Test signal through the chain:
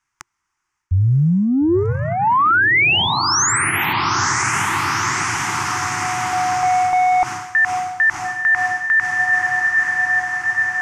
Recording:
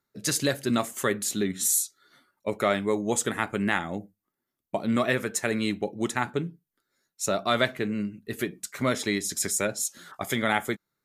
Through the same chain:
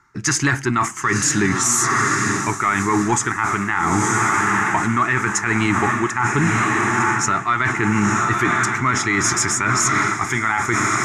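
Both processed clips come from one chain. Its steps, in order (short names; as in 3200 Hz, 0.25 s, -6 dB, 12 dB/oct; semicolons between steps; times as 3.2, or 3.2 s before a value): band shelf 2600 Hz -9.5 dB; diffused feedback echo 0.948 s, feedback 70%, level -11 dB; in parallel at -9 dB: soft clip -26.5 dBFS; on the sum: EQ curve 120 Hz 0 dB, 220 Hz -10 dB, 350 Hz -3 dB, 540 Hz -27 dB, 880 Hz +3 dB, 2000 Hz +12 dB, 4000 Hz -7 dB, 6300 Hz -2 dB, 14000 Hz -29 dB; reverse; compressor 16:1, threshold -34 dBFS; reverse; maximiser +28.5 dB; gain -7 dB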